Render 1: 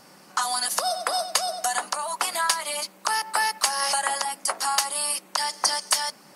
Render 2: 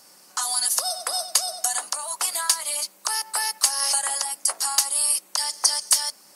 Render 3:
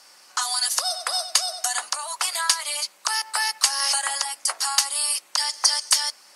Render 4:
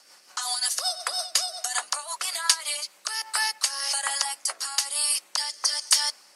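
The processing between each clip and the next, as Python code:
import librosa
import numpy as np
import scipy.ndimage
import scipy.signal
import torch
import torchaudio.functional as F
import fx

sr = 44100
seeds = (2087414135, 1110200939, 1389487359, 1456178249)

y1 = fx.bass_treble(x, sr, bass_db=-8, treble_db=12)
y1 = y1 * librosa.db_to_amplitude(-6.0)
y2 = fx.bandpass_q(y1, sr, hz=2300.0, q=0.54)
y2 = y2 * librosa.db_to_amplitude(5.5)
y3 = fx.rotary_switch(y2, sr, hz=5.5, then_hz=1.1, switch_at_s=2.48)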